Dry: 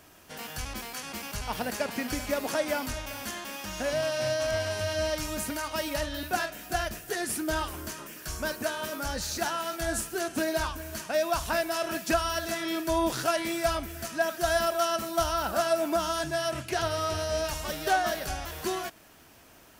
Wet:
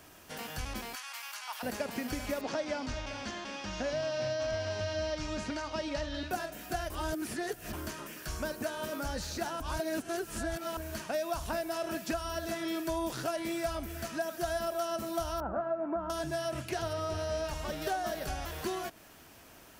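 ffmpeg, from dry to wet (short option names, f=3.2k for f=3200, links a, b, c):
-filter_complex "[0:a]asettb=1/sr,asplit=3[a][b][c];[a]atrim=end=0.954[d];[b]atrim=start=0.95:end=1.63,asetpts=PTS-STARTPTS,afade=t=in:d=0.004:c=qsin,afade=t=out:st=0.676:d=0.004:c=qsin,highpass=f=950:w=0.5412,highpass=f=950:w=1.3066[e];[c]atrim=start=1.626[f];[d][e]acrossfade=d=0.004:c1=hsin:c2=qsin[g];[g][f]acrossfade=d=0.004:c1=qsin:c2=hsin,asettb=1/sr,asplit=3[h][i][j];[h]atrim=end=2.414[k];[i]atrim=start=2.41:end=6.31,asetpts=PTS-STARTPTS,afade=t=in:d=0.004:c=qsin,afade=t=out:st=3.896:d=0.004:c=qsin,lowpass=f=5.7k:w=0.5412,lowpass=f=5.7k:w=1.3066[l];[j]atrim=start=6.306[m];[k][l]acrossfade=d=0.004:c1=hsin:c2=qsin[n];[n][m]acrossfade=d=0.004:c1=qsin:c2=hsin,asettb=1/sr,asplit=3[o][p][q];[o]atrim=end=15.404[r];[p]atrim=start=15.4:end=16.1,asetpts=PTS-STARTPTS,afade=t=in:d=0.004:c=qsin,afade=t=out:st=0.696:d=0.004:c=qsin,lowpass=f=1.5k:w=0.5412,lowpass=f=1.5k:w=1.3066[s];[q]atrim=start=16.096[t];[r][s]acrossfade=d=0.004:c1=hsin:c2=qsin[u];[u][t]acrossfade=d=0.004:c1=qsin:c2=hsin,asettb=1/sr,asplit=3[v][w][x];[v]atrim=end=16.934[y];[w]atrim=start=16.93:end=17.82,asetpts=PTS-STARTPTS,afade=t=in:d=0.004:c=qsin,afade=t=out:st=0.886:d=0.004:c=qsin,lowpass=f=3.2k:p=1[z];[x]atrim=start=17.816[aa];[y][z]acrossfade=d=0.004:c1=hsin:c2=qsin[ab];[ab][aa]acrossfade=d=0.004:c1=qsin:c2=hsin,asplit=5[ac][ad][ae][af][ag];[ac]atrim=end=6.902[ah];[ad]atrim=start=6.898:end=7.732,asetpts=PTS-STARTPTS,areverse[ai];[ae]atrim=start=7.728:end=9.602[aj];[af]atrim=start=9.598:end=10.772,asetpts=PTS-STARTPTS,areverse[ak];[ag]atrim=start=10.768[al];[ah][ai]acrossfade=d=0.004:c1=hsin:c2=hsin[am];[am][aj]acrossfade=d=0.004:c1=hsin:c2=hsin[an];[an][ak]acrossfade=d=0.004:c1=hsin:c2=hsin[ao];[ao][al]acrossfade=d=0.004:c1=hsin:c2=hsin,acrossover=split=810|5000[ap][aq][ar];[ap]acompressor=threshold=-33dB:ratio=4[as];[aq]acompressor=threshold=-42dB:ratio=4[at];[ar]acompressor=threshold=-48dB:ratio=4[au];[as][at][au]amix=inputs=3:normalize=0"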